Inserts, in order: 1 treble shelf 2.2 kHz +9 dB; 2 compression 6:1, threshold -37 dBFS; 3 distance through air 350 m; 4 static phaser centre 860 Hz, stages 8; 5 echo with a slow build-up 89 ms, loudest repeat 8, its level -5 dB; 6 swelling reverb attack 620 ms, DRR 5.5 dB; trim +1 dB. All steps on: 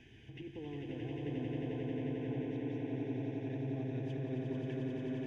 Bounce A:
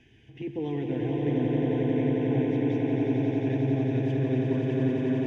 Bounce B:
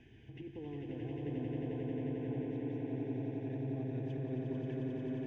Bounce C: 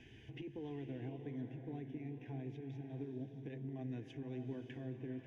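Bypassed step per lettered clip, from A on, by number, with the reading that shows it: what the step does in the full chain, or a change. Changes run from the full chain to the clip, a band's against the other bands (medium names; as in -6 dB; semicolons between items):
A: 2, mean gain reduction 11.0 dB; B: 1, 2 kHz band -4.0 dB; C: 5, momentary loudness spread change -4 LU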